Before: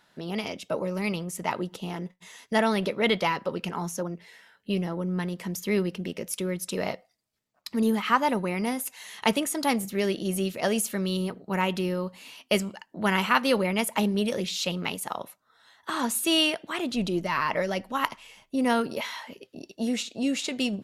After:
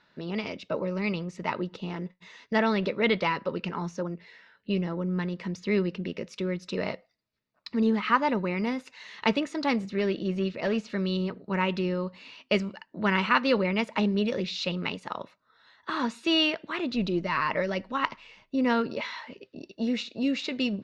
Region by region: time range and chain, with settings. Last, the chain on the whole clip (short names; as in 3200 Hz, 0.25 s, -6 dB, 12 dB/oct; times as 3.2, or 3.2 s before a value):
9.98–10.89 hard clip -20 dBFS + air absorption 74 m
whole clip: LPF 4700 Hz 24 dB/oct; bell 750 Hz -8.5 dB 0.26 oct; notch 3200 Hz, Q 9.5